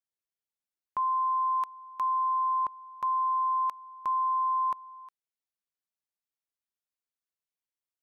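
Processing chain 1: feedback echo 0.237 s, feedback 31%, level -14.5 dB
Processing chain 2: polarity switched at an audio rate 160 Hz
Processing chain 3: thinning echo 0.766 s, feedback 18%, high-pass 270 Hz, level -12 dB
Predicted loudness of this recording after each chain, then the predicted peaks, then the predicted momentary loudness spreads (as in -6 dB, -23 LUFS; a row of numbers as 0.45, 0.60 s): -30.0, -28.5, -30.0 LUFS; -24.0, -24.0, -24.0 dBFS; 9, 9, 13 LU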